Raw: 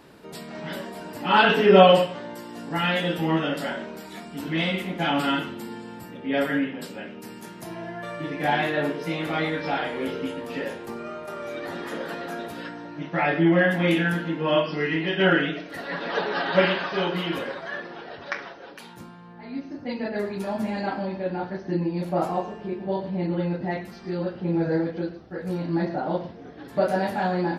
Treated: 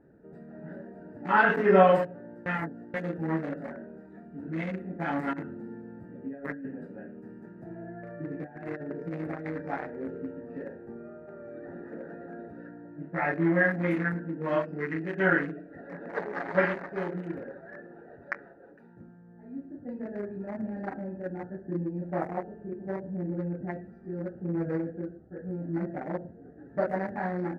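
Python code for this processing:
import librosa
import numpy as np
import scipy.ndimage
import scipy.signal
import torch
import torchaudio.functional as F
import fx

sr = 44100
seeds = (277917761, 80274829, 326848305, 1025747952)

y = fx.over_compress(x, sr, threshold_db=-27.0, ratio=-0.5, at=(5.33, 9.62))
y = fx.edit(y, sr, fx.reverse_span(start_s=2.46, length_s=0.48), tone=tone)
y = fx.wiener(y, sr, points=41)
y = fx.high_shelf_res(y, sr, hz=2400.0, db=-8.5, q=3.0)
y = y * librosa.db_to_amplitude(-5.5)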